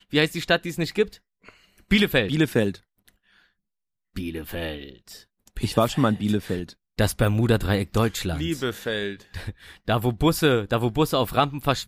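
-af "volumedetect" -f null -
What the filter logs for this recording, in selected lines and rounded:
mean_volume: -24.7 dB
max_volume: -6.3 dB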